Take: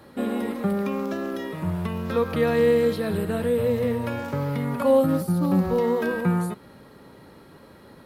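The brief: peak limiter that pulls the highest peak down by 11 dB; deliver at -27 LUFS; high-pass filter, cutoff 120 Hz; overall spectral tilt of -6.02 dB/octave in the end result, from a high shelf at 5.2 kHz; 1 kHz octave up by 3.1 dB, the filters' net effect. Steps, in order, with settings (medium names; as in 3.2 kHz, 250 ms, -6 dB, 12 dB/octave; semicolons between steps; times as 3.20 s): high-pass 120 Hz; peaking EQ 1 kHz +3.5 dB; treble shelf 5.2 kHz +8 dB; trim +1 dB; peak limiter -18 dBFS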